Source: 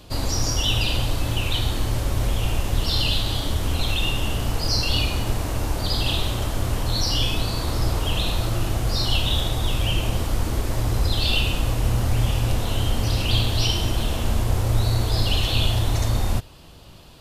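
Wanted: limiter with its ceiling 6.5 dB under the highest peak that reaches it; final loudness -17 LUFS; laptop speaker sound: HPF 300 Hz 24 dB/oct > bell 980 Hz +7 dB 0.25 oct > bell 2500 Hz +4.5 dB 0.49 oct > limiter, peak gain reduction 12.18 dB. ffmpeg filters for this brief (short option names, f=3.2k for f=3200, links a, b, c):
-af "alimiter=limit=-14dB:level=0:latency=1,highpass=f=300:w=0.5412,highpass=f=300:w=1.3066,equalizer=f=980:t=o:w=0.25:g=7,equalizer=f=2.5k:t=o:w=0.49:g=4.5,volume=16dB,alimiter=limit=-9.5dB:level=0:latency=1"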